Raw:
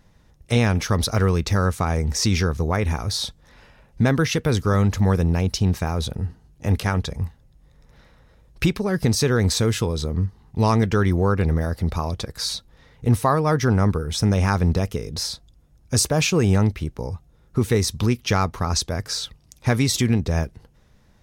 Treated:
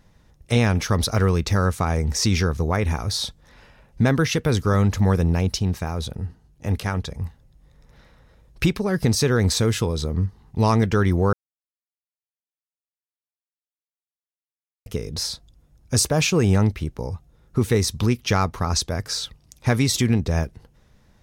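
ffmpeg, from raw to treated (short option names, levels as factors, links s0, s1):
-filter_complex "[0:a]asplit=5[s0][s1][s2][s3][s4];[s0]atrim=end=5.592[s5];[s1]atrim=start=5.588:end=7.252,asetpts=PTS-STARTPTS,volume=0.708[s6];[s2]atrim=start=7.248:end=11.33,asetpts=PTS-STARTPTS,afade=t=out:st=4.078:d=0.004:c=hsin[s7];[s3]atrim=start=11.33:end=14.86,asetpts=PTS-STARTPTS,volume=0[s8];[s4]atrim=start=14.86,asetpts=PTS-STARTPTS,afade=t=in:d=0.004:c=hsin[s9];[s5][s6]acrossfade=d=0.004:c1=hsin:c2=hsin[s10];[s7][s8][s9]concat=n=3:v=0:a=1[s11];[s10][s11]acrossfade=d=0.004:c1=hsin:c2=hsin"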